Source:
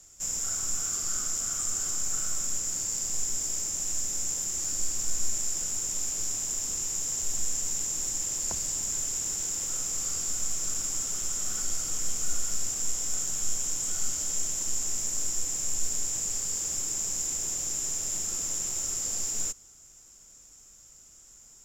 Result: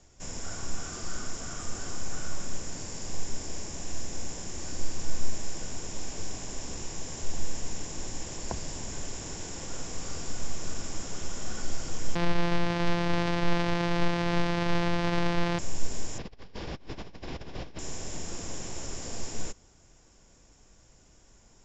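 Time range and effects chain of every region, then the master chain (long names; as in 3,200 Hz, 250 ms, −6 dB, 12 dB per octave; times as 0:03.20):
0:12.15–0:15.59: samples sorted by size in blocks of 256 samples + tilt shelving filter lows −4 dB, about 1,200 Hz
0:16.18–0:17.79: Butterworth low-pass 4,500 Hz + compressor whose output falls as the input rises −44 dBFS, ratio −0.5
whole clip: low-pass filter 5,600 Hz 24 dB per octave; high-shelf EQ 2,300 Hz −11 dB; notch filter 1,300 Hz, Q 7.7; level +7 dB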